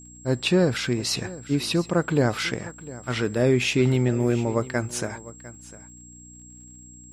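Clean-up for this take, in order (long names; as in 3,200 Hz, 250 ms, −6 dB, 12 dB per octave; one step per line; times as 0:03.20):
click removal
hum removal 60.8 Hz, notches 5
notch filter 7,600 Hz, Q 30
echo removal 702 ms −18 dB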